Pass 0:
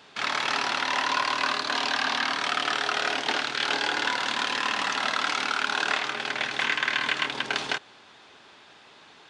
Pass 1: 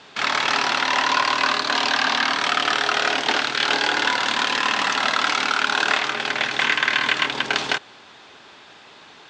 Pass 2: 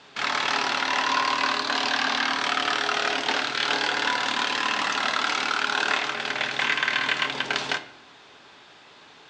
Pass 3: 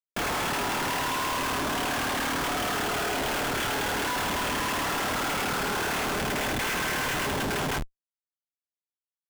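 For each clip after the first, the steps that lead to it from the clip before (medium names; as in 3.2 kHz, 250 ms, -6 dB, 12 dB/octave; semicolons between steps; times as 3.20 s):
steep low-pass 8.4 kHz 48 dB/octave; trim +6 dB
reverberation RT60 0.70 s, pre-delay 7 ms, DRR 9.5 dB; trim -4.5 dB
brick-wall FIR low-pass 3.6 kHz; Schmitt trigger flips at -32 dBFS; trim -1.5 dB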